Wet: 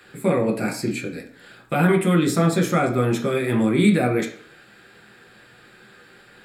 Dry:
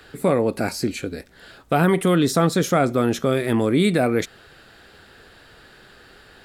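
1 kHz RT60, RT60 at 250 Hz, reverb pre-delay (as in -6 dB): 0.50 s, 0.55 s, 3 ms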